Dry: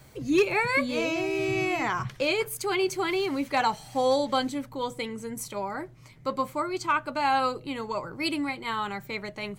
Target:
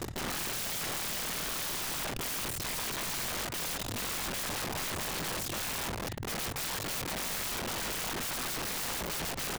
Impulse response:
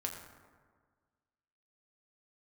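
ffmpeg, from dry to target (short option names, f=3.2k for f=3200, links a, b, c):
-filter_complex "[0:a]lowpass=12k,afwtdn=0.0141,highshelf=f=7.5k:g=-4.5,areverse,acompressor=threshold=-34dB:ratio=5,areverse,aeval=exprs='0.0562*sin(PI/2*7.94*val(0)/0.0562)':c=same,tremolo=f=47:d=0.788,asplit=2[a][b];[b]adelay=89,lowpass=f=1.9k:p=1,volume=-23dB,asplit=2[c][d];[d]adelay=89,lowpass=f=1.9k:p=1,volume=0.39,asplit=2[e][f];[f]adelay=89,lowpass=f=1.9k:p=1,volume=0.39[g];[a][c][e][g]amix=inputs=4:normalize=0,aeval=exprs='0.0631*(cos(1*acos(clip(val(0)/0.0631,-1,1)))-cos(1*PI/2))+0.00631*(cos(2*acos(clip(val(0)/0.0631,-1,1)))-cos(2*PI/2))+0.00282*(cos(7*acos(clip(val(0)/0.0631,-1,1)))-cos(7*PI/2))':c=same,asetrate=38170,aresample=44100,atempo=1.15535,aeval=exprs='(mod(70.8*val(0)+1,2)-1)/70.8':c=same,volume=6.5dB"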